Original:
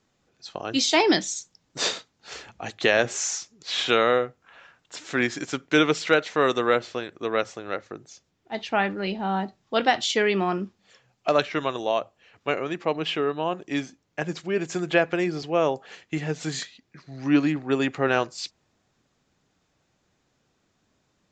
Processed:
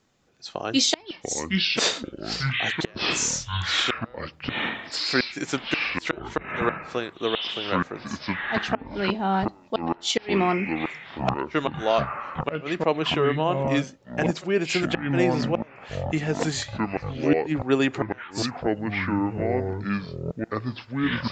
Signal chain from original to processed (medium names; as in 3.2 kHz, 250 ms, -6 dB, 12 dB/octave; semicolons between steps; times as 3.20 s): inverted gate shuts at -11 dBFS, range -33 dB; ever faster or slower copies 462 ms, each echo -6 st, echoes 3; trim +2.5 dB